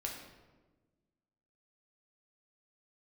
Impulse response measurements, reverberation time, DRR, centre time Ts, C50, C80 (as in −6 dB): 1.3 s, −1.0 dB, 45 ms, 4.0 dB, 6.0 dB